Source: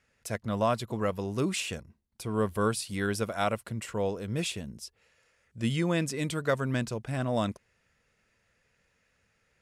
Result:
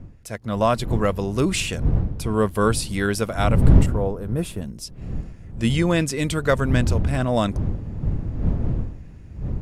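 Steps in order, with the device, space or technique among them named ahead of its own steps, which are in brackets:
0:03.86–0:04.62: flat-topped bell 3,900 Hz −13.5 dB 2.3 octaves
smartphone video outdoors (wind on the microphone 110 Hz −29 dBFS; automatic gain control gain up to 8 dB; AAC 128 kbit/s 44,100 Hz)

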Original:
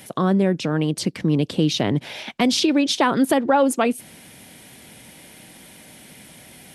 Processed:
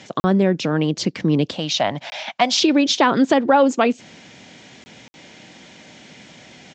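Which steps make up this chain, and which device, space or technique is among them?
call with lost packets (high-pass filter 130 Hz 6 dB per octave; downsampling to 16,000 Hz; dropped packets bursts)
0:01.52–0:02.62: low shelf with overshoot 520 Hz −8 dB, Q 3
level +3 dB

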